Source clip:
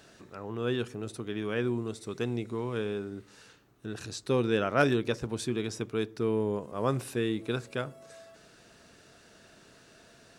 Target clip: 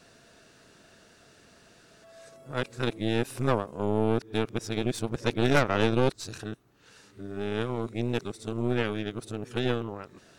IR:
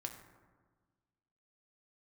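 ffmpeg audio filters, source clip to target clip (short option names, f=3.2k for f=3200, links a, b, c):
-af "areverse,aeval=exprs='0.299*(cos(1*acos(clip(val(0)/0.299,-1,1)))-cos(1*PI/2))+0.0596*(cos(6*acos(clip(val(0)/0.299,-1,1)))-cos(6*PI/2))':c=same"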